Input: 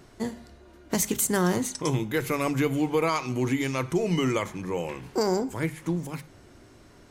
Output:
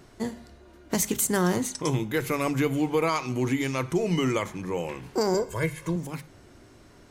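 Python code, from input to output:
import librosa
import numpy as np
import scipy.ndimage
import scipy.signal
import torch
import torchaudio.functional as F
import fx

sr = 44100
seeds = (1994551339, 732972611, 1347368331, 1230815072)

y = fx.comb(x, sr, ms=1.9, depth=0.89, at=(5.34, 5.96))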